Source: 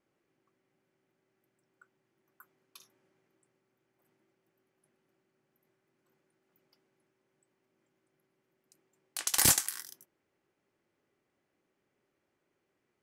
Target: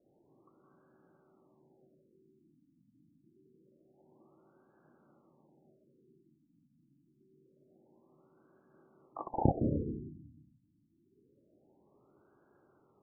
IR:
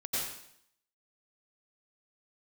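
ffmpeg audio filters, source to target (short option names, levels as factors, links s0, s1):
-filter_complex "[0:a]asplit=2[s0][s1];[s1]highpass=f=75:p=1[s2];[1:a]atrim=start_sample=2205,asetrate=24255,aresample=44100[s3];[s2][s3]afir=irnorm=-1:irlink=0,volume=0.355[s4];[s0][s4]amix=inputs=2:normalize=0,adynamicequalizer=threshold=0.00178:dfrequency=120:dqfactor=2.1:tfrequency=120:tqfactor=2.1:attack=5:release=100:ratio=0.375:range=3.5:mode=cutabove:tftype=bell,asoftclip=type=tanh:threshold=0.119,afftfilt=real='re*lt(b*sr/1024,300*pow(1700/300,0.5+0.5*sin(2*PI*0.26*pts/sr)))':imag='im*lt(b*sr/1024,300*pow(1700/300,0.5+0.5*sin(2*PI*0.26*pts/sr)))':win_size=1024:overlap=0.75,volume=2.66"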